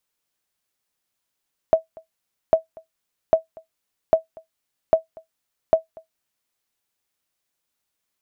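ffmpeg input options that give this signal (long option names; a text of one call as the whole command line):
ffmpeg -f lavfi -i "aevalsrc='0.531*(sin(2*PI*647*mod(t,0.8))*exp(-6.91*mod(t,0.8)/0.13)+0.0501*sin(2*PI*647*max(mod(t,0.8)-0.24,0))*exp(-6.91*max(mod(t,0.8)-0.24,0)/0.13))':duration=4.8:sample_rate=44100" out.wav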